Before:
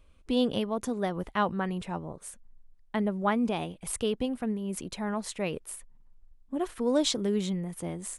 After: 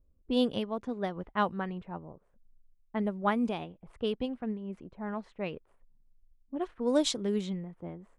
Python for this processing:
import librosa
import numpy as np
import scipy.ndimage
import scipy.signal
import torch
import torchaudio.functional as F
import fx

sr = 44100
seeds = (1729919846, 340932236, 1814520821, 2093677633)

y = fx.env_lowpass(x, sr, base_hz=400.0, full_db=-22.5)
y = fx.upward_expand(y, sr, threshold_db=-37.0, expansion=1.5)